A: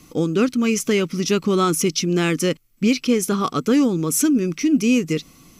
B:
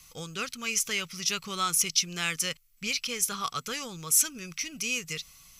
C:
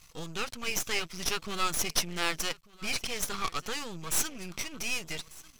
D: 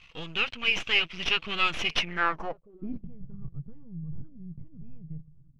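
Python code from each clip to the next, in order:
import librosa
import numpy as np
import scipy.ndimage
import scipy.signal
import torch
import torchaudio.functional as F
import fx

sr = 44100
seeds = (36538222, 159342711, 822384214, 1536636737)

y1 = fx.tone_stack(x, sr, knobs='10-0-10')
y2 = fx.high_shelf(y1, sr, hz=7200.0, db=-11.0)
y2 = y2 + 10.0 ** (-22.0 / 20.0) * np.pad(y2, (int(1193 * sr / 1000.0), 0))[:len(y2)]
y2 = np.maximum(y2, 0.0)
y2 = F.gain(torch.from_numpy(y2), 4.5).numpy()
y3 = fx.filter_sweep_lowpass(y2, sr, from_hz=2800.0, to_hz=140.0, start_s=1.98, end_s=3.14, q=4.3)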